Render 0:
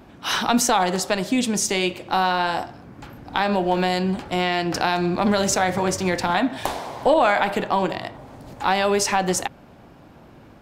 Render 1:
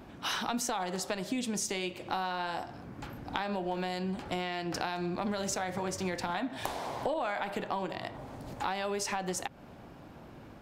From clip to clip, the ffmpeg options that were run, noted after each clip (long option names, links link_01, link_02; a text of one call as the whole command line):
ffmpeg -i in.wav -af "acompressor=threshold=-29dB:ratio=4,volume=-3dB" out.wav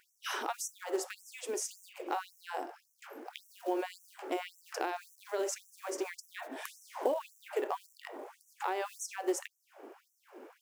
ffmpeg -i in.wav -af "equalizer=frequency=100:width_type=o:width=0.67:gain=-11,equalizer=frequency=400:width_type=o:width=0.67:gain=10,equalizer=frequency=4000:width_type=o:width=0.67:gain=-10,acrusher=bits=7:mode=log:mix=0:aa=0.000001,afftfilt=real='re*gte(b*sr/1024,240*pow(5700/240,0.5+0.5*sin(2*PI*1.8*pts/sr)))':imag='im*gte(b*sr/1024,240*pow(5700/240,0.5+0.5*sin(2*PI*1.8*pts/sr)))':win_size=1024:overlap=0.75,volume=-1.5dB" out.wav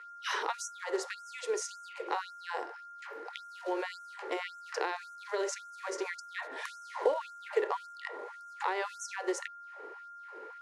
ffmpeg -i in.wav -af "aeval=exprs='val(0)+0.00398*sin(2*PI*1400*n/s)':channel_layout=same,highpass=frequency=380:width=0.5412,highpass=frequency=380:width=1.3066,equalizer=frequency=460:width_type=q:width=4:gain=8,equalizer=frequency=690:width_type=q:width=4:gain=-6,equalizer=frequency=1000:width_type=q:width=4:gain=6,equalizer=frequency=1900:width_type=q:width=4:gain=8,equalizer=frequency=4100:width_type=q:width=4:gain=7,equalizer=frequency=8000:width_type=q:width=4:gain=-5,lowpass=frequency=9300:width=0.5412,lowpass=frequency=9300:width=1.3066" out.wav